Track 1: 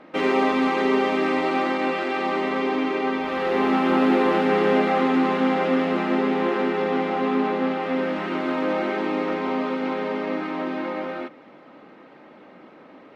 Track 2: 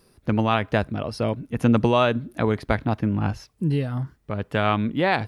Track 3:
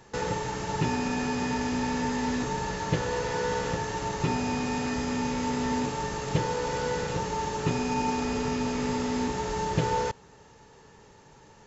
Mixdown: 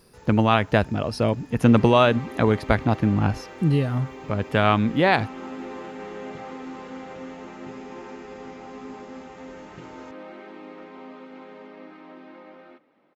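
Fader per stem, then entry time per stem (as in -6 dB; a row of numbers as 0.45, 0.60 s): -17.0, +2.5, -19.5 dB; 1.50, 0.00, 0.00 s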